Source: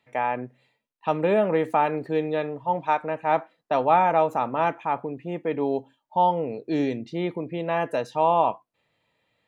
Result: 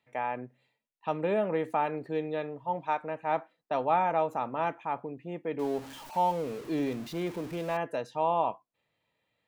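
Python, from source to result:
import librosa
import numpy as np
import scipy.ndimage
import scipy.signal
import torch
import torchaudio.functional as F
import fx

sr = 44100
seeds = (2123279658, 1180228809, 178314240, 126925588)

y = fx.zero_step(x, sr, step_db=-33.0, at=(5.59, 7.77))
y = y * 10.0 ** (-7.0 / 20.0)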